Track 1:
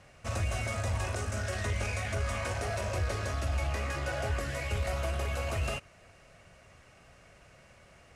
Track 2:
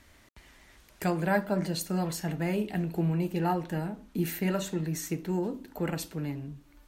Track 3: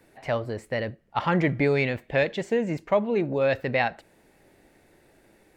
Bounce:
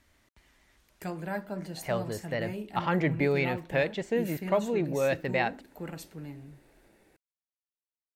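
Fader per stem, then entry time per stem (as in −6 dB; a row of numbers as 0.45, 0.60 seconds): muted, −8.0 dB, −4.0 dB; muted, 0.00 s, 1.60 s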